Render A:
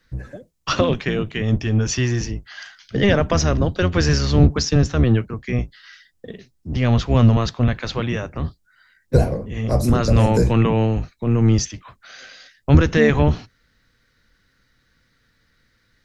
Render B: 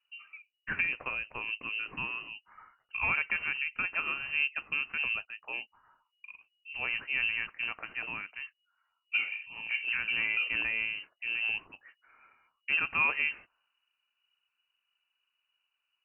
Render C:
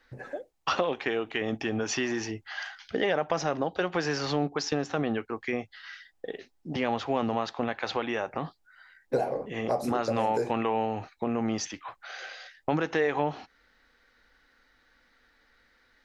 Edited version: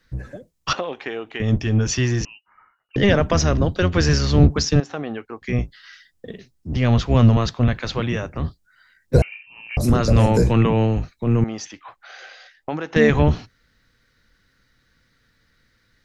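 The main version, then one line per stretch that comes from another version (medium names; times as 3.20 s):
A
0.73–1.40 s: from C
2.25–2.96 s: from B
4.80–5.42 s: from C
9.22–9.77 s: from B
11.44–12.96 s: from C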